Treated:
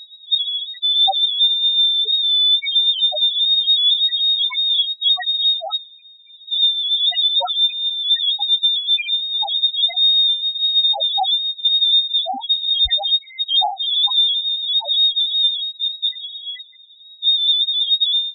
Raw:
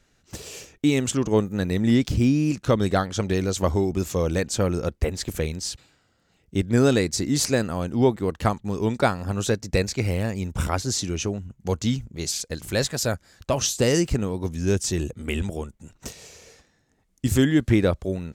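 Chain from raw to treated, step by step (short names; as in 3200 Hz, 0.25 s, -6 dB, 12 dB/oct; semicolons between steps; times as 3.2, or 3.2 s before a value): median filter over 9 samples; notch 500 Hz, Q 12; inverted band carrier 3800 Hz; bell 750 Hz +7.5 dB 0.6 oct; negative-ratio compressor -31 dBFS, ratio -1; treble ducked by the level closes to 1400 Hz, closed at -22.5 dBFS; loudest bins only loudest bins 1; maximiser +34.5 dB; gain -8 dB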